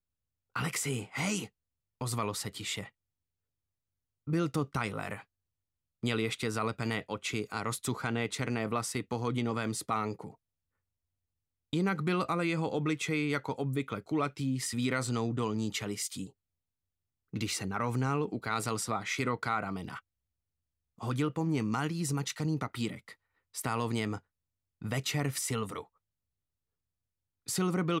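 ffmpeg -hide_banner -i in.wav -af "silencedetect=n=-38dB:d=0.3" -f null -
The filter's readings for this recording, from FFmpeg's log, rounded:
silence_start: 0.00
silence_end: 0.56 | silence_duration: 0.56
silence_start: 1.46
silence_end: 2.01 | silence_duration: 0.55
silence_start: 2.86
silence_end: 4.28 | silence_duration: 1.42
silence_start: 5.20
silence_end: 6.03 | silence_duration: 0.84
silence_start: 10.27
silence_end: 11.73 | silence_duration: 1.46
silence_start: 16.27
silence_end: 17.34 | silence_duration: 1.07
silence_start: 19.99
silence_end: 21.01 | silence_duration: 1.03
silence_start: 23.09
silence_end: 23.55 | silence_duration: 0.47
silence_start: 24.18
silence_end: 24.82 | silence_duration: 0.64
silence_start: 25.81
silence_end: 27.48 | silence_duration: 1.67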